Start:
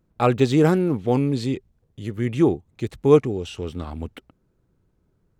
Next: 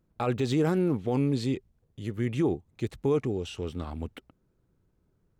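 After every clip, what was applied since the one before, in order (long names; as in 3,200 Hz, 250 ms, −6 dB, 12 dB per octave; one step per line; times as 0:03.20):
brickwall limiter −13.5 dBFS, peak gain reduction 10 dB
level −4 dB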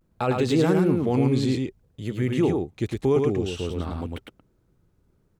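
single-tap delay 108 ms −3.5 dB
pitch vibrato 0.56 Hz 55 cents
level +4 dB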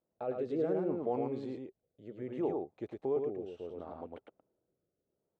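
resonant band-pass 630 Hz, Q 2
rotating-speaker cabinet horn 0.65 Hz
level −3 dB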